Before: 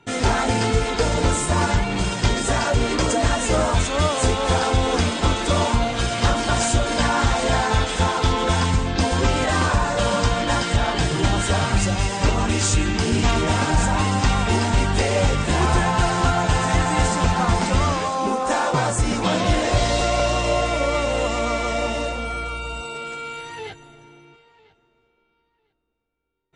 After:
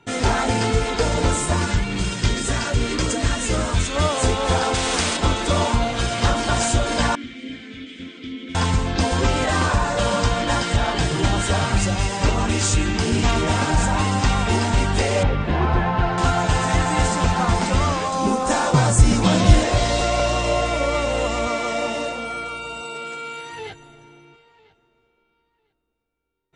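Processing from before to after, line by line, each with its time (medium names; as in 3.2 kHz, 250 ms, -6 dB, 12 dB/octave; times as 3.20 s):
1.56–3.96 s: peaking EQ 750 Hz -8.5 dB 1.2 oct
4.74–5.17 s: spectrum-flattening compressor 2:1
7.15–8.55 s: vowel filter i
15.23–16.18 s: distance through air 320 m
18.12–19.64 s: tone controls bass +9 dB, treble +5 dB
21.47–23.53 s: high-pass 150 Hz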